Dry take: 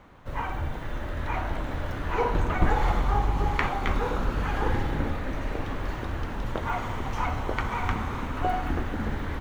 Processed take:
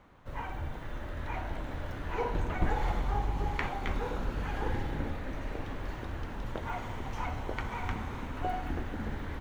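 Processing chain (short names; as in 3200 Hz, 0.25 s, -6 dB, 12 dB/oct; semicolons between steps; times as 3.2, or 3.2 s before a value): dynamic EQ 1200 Hz, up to -5 dB, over -44 dBFS, Q 3.8; gain -6.5 dB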